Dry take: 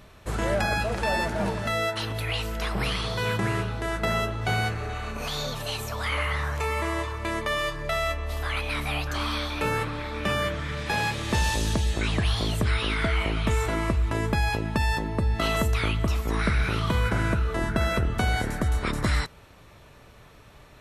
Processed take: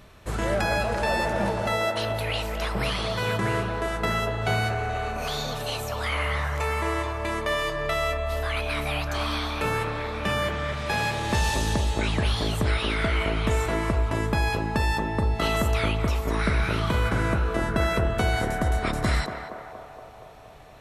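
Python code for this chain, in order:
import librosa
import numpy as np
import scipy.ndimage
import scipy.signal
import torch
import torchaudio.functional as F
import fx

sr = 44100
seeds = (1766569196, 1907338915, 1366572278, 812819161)

y = fx.echo_banded(x, sr, ms=235, feedback_pct=75, hz=680.0, wet_db=-4.0)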